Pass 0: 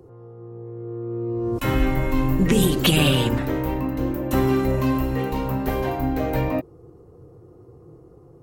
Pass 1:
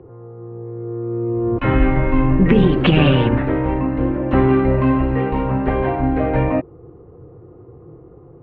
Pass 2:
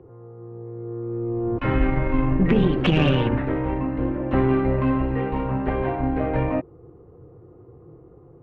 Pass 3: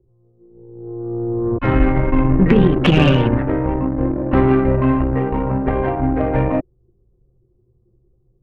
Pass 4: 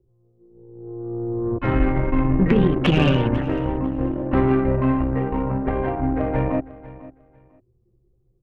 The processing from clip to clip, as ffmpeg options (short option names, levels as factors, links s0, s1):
-af "lowpass=f=2500:w=0.5412,lowpass=f=2500:w=1.3066,volume=1.88"
-af "aeval=exprs='0.891*(cos(1*acos(clip(val(0)/0.891,-1,1)))-cos(1*PI/2))+0.0355*(cos(6*acos(clip(val(0)/0.891,-1,1)))-cos(6*PI/2))':c=same,volume=0.531"
-af "aeval=exprs='0.531*(cos(1*acos(clip(val(0)/0.531,-1,1)))-cos(1*PI/2))+0.0335*(cos(8*acos(clip(val(0)/0.531,-1,1)))-cos(8*PI/2))':c=same,anlmdn=100,volume=2"
-af "aecho=1:1:498|996:0.126|0.0252,volume=0.596"